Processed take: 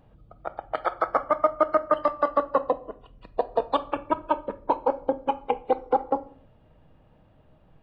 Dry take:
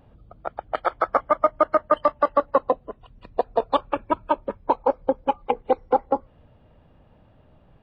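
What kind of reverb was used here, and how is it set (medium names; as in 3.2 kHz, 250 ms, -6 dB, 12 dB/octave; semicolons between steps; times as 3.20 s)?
simulated room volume 730 m³, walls furnished, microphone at 0.58 m; trim -3 dB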